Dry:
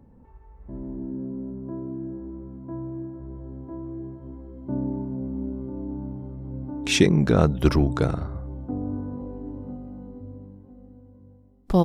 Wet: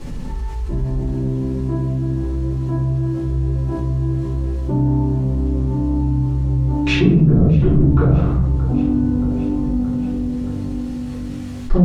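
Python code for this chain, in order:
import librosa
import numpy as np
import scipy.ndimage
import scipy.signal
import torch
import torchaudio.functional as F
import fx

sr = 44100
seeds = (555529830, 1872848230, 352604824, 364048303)

p1 = fx.env_lowpass_down(x, sr, base_hz=370.0, full_db=-15.5)
p2 = fx.peak_eq(p1, sr, hz=470.0, db=-3.5, octaves=2.1)
p3 = 10.0 ** (-24.0 / 20.0) * np.tanh(p2 / 10.0 ** (-24.0 / 20.0))
p4 = p2 + F.gain(torch.from_numpy(p3), -3.5).numpy()
p5 = fx.quant_dither(p4, sr, seeds[0], bits=10, dither='triangular')
p6 = fx.air_absorb(p5, sr, metres=72.0)
p7 = p6 + fx.echo_feedback(p6, sr, ms=624, feedback_pct=57, wet_db=-19.5, dry=0)
p8 = fx.room_shoebox(p7, sr, seeds[1], volume_m3=75.0, walls='mixed', distance_m=3.1)
p9 = fx.env_flatten(p8, sr, amount_pct=50)
y = F.gain(torch.from_numpy(p9), -11.0).numpy()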